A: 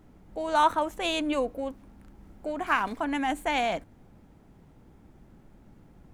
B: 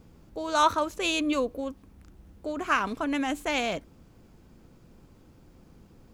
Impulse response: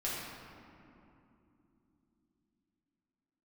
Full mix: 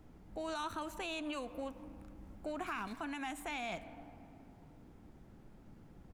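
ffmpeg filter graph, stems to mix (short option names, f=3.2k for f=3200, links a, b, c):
-filter_complex "[0:a]volume=-4.5dB,asplit=2[a][b];[b]volume=-22dB[c];[1:a]lowpass=5.6k,adelay=0.8,volume=-12.5dB[d];[2:a]atrim=start_sample=2205[e];[c][e]afir=irnorm=-1:irlink=0[f];[a][d][f]amix=inputs=3:normalize=0,acrossover=split=500|1700[g][h][i];[g]acompressor=threshold=-43dB:ratio=4[j];[h]acompressor=threshold=-42dB:ratio=4[k];[i]acompressor=threshold=-38dB:ratio=4[l];[j][k][l]amix=inputs=3:normalize=0,alimiter=level_in=6.5dB:limit=-24dB:level=0:latency=1:release=92,volume=-6.5dB"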